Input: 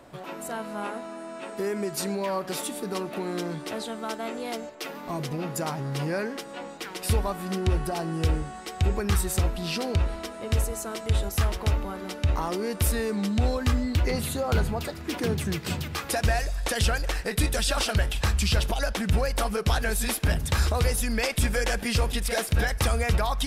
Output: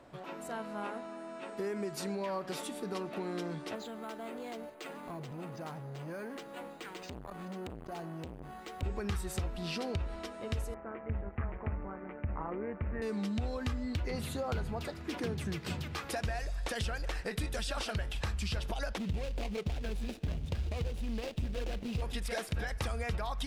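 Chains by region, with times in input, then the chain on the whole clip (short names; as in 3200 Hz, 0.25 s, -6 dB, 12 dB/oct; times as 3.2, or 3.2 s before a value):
3.75–8.83 compressor 3:1, threshold -31 dBFS + careless resampling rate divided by 4×, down filtered, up hold + core saturation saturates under 600 Hz
10.74–13.02 steep low-pass 2300 Hz 48 dB/oct + AM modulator 140 Hz, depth 40%
18.98–22.02 median filter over 41 samples + resonant high shelf 2100 Hz +8.5 dB, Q 1.5
whole clip: compressor, threshold -25 dBFS; high shelf 8200 Hz -11 dB; gain -6 dB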